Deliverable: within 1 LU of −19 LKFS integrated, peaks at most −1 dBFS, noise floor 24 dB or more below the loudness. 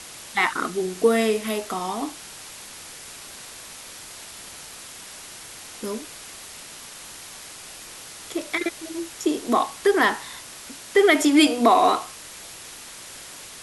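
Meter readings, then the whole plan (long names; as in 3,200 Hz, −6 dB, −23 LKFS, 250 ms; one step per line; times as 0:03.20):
background noise floor −41 dBFS; target noise floor −46 dBFS; integrated loudness −22.0 LKFS; sample peak −4.5 dBFS; target loudness −19.0 LKFS
→ noise reduction from a noise print 6 dB
level +3 dB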